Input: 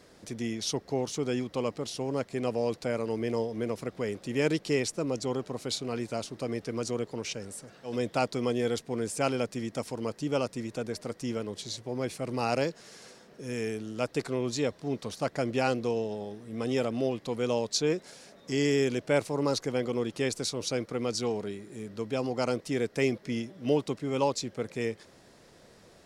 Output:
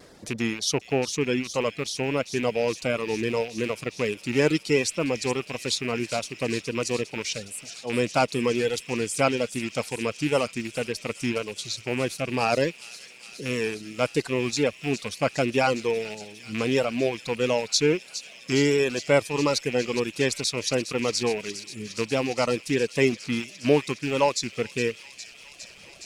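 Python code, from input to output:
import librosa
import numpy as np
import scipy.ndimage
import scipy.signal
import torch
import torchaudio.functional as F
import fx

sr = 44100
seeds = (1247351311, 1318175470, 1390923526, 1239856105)

y = fx.rattle_buzz(x, sr, strikes_db=-38.0, level_db=-26.0)
y = fx.dereverb_blind(y, sr, rt60_s=1.8)
y = fx.echo_wet_highpass(y, sr, ms=411, feedback_pct=83, hz=3200.0, wet_db=-10.5)
y = fx.vibrato(y, sr, rate_hz=1.5, depth_cents=30.0)
y = y * 10.0 ** (6.5 / 20.0)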